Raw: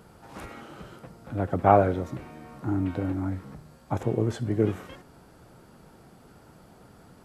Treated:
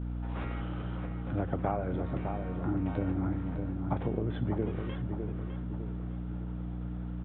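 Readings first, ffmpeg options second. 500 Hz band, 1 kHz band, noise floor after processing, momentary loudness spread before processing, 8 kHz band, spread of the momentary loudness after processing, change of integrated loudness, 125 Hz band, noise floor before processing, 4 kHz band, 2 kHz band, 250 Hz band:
−9.5 dB, −11.5 dB, −37 dBFS, 24 LU, below −25 dB, 7 LU, −8.0 dB, −1.5 dB, −54 dBFS, can't be measured, −6.0 dB, −3.0 dB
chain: -filter_complex "[0:a]agate=range=-33dB:threshold=-51dB:ratio=3:detection=peak,acompressor=threshold=-28dB:ratio=12,aeval=exprs='val(0)+0.02*(sin(2*PI*60*n/s)+sin(2*PI*2*60*n/s)/2+sin(2*PI*3*60*n/s)/3+sin(2*PI*4*60*n/s)/4+sin(2*PI*5*60*n/s)/5)':channel_layout=same,asplit=2[link_01][link_02];[link_02]adelay=606,lowpass=frequency=2000:poles=1,volume=-6dB,asplit=2[link_03][link_04];[link_04]adelay=606,lowpass=frequency=2000:poles=1,volume=0.46,asplit=2[link_05][link_06];[link_06]adelay=606,lowpass=frequency=2000:poles=1,volume=0.46,asplit=2[link_07][link_08];[link_08]adelay=606,lowpass=frequency=2000:poles=1,volume=0.46,asplit=2[link_09][link_10];[link_10]adelay=606,lowpass=frequency=2000:poles=1,volume=0.46,asplit=2[link_11][link_12];[link_12]adelay=606,lowpass=frequency=2000:poles=1,volume=0.46[link_13];[link_01][link_03][link_05][link_07][link_09][link_11][link_13]amix=inputs=7:normalize=0,aresample=8000,aresample=44100"

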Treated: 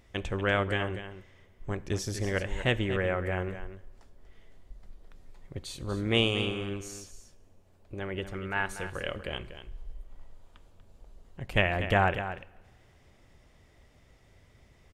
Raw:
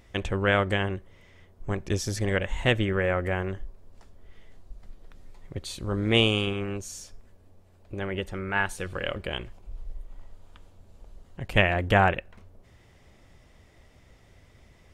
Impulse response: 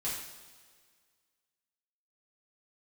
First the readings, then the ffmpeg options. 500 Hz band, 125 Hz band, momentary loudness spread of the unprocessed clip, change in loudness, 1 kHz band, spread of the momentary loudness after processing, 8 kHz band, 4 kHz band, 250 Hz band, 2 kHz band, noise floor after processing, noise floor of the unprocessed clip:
−3.5 dB, −4.0 dB, 20 LU, −4.0 dB, −3.5 dB, 20 LU, −3.5 dB, −3.5 dB, −4.0 dB, −3.5 dB, −61 dBFS, −57 dBFS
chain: -filter_complex "[0:a]aecho=1:1:240:0.282,asplit=2[link_01][link_02];[1:a]atrim=start_sample=2205[link_03];[link_02][link_03]afir=irnorm=-1:irlink=0,volume=-20dB[link_04];[link_01][link_04]amix=inputs=2:normalize=0,volume=-4.5dB"

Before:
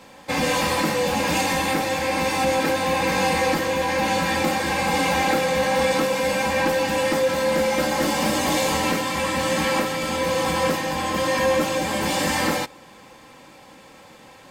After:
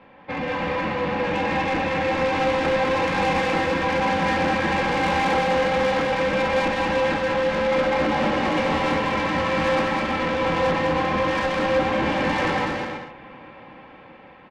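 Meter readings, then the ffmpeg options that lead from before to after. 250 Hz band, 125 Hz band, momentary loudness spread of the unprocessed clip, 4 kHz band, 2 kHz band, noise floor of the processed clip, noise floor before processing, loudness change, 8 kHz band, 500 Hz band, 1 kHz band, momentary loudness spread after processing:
0.0 dB, +0.5 dB, 3 LU, −4.0 dB, 0.0 dB, −46 dBFS, −47 dBFS, −0.5 dB, −15.0 dB, 0.0 dB, +0.5 dB, 4 LU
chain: -af "lowpass=frequency=2700:width=0.5412,lowpass=frequency=2700:width=1.3066,dynaudnorm=framelen=640:gausssize=5:maxgain=7dB,asoftclip=type=tanh:threshold=-18dB,aecho=1:1:200|320|392|435.2|461.1:0.631|0.398|0.251|0.158|0.1,volume=-3dB"

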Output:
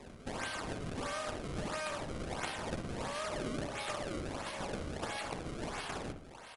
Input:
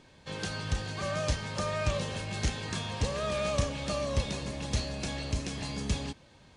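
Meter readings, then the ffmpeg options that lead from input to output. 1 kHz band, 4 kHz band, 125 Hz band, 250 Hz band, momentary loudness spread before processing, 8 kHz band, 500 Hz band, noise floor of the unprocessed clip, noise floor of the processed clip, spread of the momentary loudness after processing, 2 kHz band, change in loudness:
−2.0 dB, −7.5 dB, −11.0 dB, −5.0 dB, 5 LU, −7.0 dB, −6.0 dB, −58 dBFS, −52 dBFS, 3 LU, −3.5 dB, −6.5 dB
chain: -filter_complex "[0:a]highpass=frequency=660:width=0.5412,highpass=frequency=660:width=1.3066,acompressor=threshold=-49dB:ratio=4,acrusher=samples=29:mix=1:aa=0.000001:lfo=1:lforange=46.4:lforate=1.5,asplit=2[link_01][link_02];[link_02]adelay=60,lowpass=frequency=1800:poles=1,volume=-6.5dB,asplit=2[link_03][link_04];[link_04]adelay=60,lowpass=frequency=1800:poles=1,volume=0.48,asplit=2[link_05][link_06];[link_06]adelay=60,lowpass=frequency=1800:poles=1,volume=0.48,asplit=2[link_07][link_08];[link_08]adelay=60,lowpass=frequency=1800:poles=1,volume=0.48,asplit=2[link_09][link_10];[link_10]adelay=60,lowpass=frequency=1800:poles=1,volume=0.48,asplit=2[link_11][link_12];[link_12]adelay=60,lowpass=frequency=1800:poles=1,volume=0.48[link_13];[link_03][link_05][link_07][link_09][link_11][link_13]amix=inputs=6:normalize=0[link_14];[link_01][link_14]amix=inputs=2:normalize=0,volume=10dB" -ar 44100 -c:a mp2 -b:a 64k

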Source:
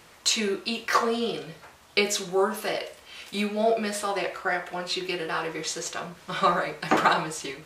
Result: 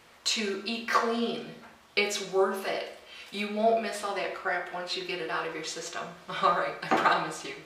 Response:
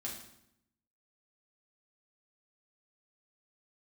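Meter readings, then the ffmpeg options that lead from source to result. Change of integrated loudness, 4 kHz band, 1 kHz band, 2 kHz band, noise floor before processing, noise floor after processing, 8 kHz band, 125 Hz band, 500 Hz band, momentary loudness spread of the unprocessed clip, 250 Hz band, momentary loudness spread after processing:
−2.5 dB, −3.5 dB, −2.0 dB, −2.0 dB, −53 dBFS, −56 dBFS, −6.5 dB, −6.5 dB, −2.5 dB, 10 LU, −3.5 dB, 11 LU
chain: -filter_complex "[0:a]asplit=2[link_01][link_02];[link_02]bass=frequency=250:gain=-13,treble=frequency=4000:gain=1[link_03];[1:a]atrim=start_sample=2205,lowpass=5200[link_04];[link_03][link_04]afir=irnorm=-1:irlink=0,volume=0dB[link_05];[link_01][link_05]amix=inputs=2:normalize=0,volume=-7dB"

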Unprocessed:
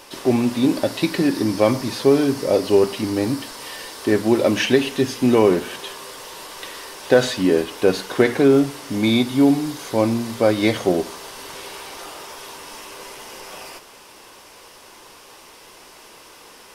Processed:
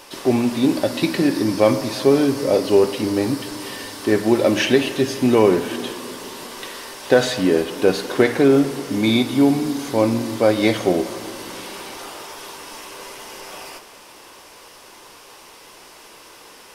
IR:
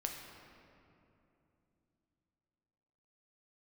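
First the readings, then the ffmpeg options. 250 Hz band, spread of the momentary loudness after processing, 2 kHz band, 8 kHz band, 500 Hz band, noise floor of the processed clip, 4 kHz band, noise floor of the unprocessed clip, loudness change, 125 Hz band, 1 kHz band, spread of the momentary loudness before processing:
+0.5 dB, 18 LU, +1.0 dB, +1.0 dB, +0.5 dB, −45 dBFS, +1.0 dB, −45 dBFS, +0.5 dB, 0.0 dB, +1.0 dB, 19 LU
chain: -filter_complex "[0:a]asplit=2[link_01][link_02];[1:a]atrim=start_sample=2205,lowshelf=frequency=130:gain=-7.5[link_03];[link_02][link_03]afir=irnorm=-1:irlink=0,volume=-5dB[link_04];[link_01][link_04]amix=inputs=2:normalize=0,volume=-2.5dB"

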